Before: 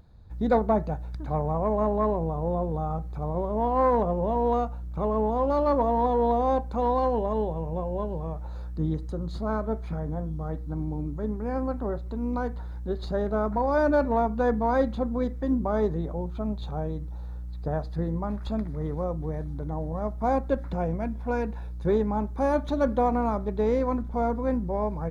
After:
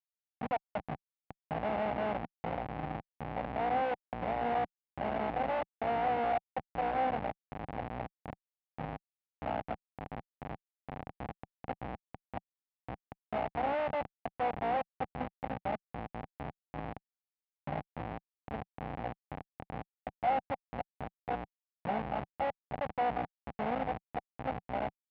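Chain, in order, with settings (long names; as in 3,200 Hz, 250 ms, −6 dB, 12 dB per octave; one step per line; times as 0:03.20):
lower of the sound and its delayed copy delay 1.4 ms
gate pattern "xxx.xxx.x" 80 BPM −60 dB
comparator with hysteresis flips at −25.5 dBFS
loudspeaker in its box 140–2,500 Hz, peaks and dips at 180 Hz −4 dB, 370 Hz −7 dB, 770 Hz +10 dB, 1,400 Hz −3 dB
level −3.5 dB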